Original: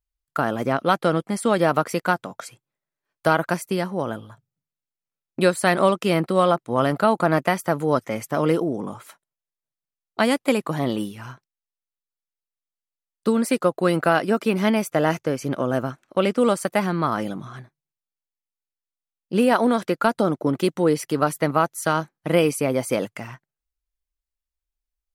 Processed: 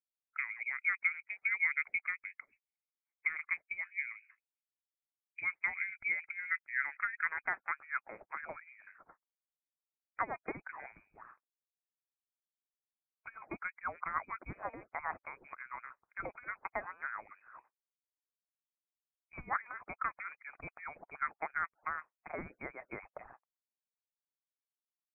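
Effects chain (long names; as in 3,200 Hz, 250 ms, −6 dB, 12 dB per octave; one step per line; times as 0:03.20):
band-pass filter sweep 500 Hz → 1,800 Hz, 0:06.01–0:08.17
voice inversion scrambler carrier 2,700 Hz
harmonic and percussive parts rebalanced harmonic −18 dB
level −5.5 dB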